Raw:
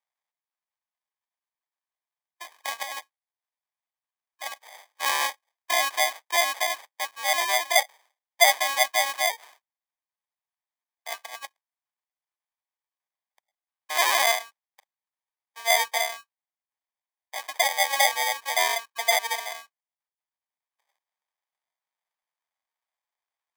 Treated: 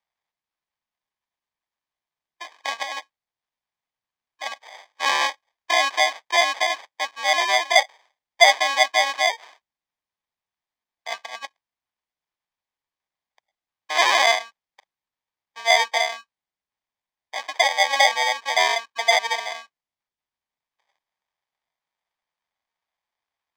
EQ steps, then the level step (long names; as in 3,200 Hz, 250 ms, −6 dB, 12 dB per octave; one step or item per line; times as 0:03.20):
high-frequency loss of the air 160 metres
low-shelf EQ 370 Hz +7 dB
high-shelf EQ 3,400 Hz +10 dB
+3.5 dB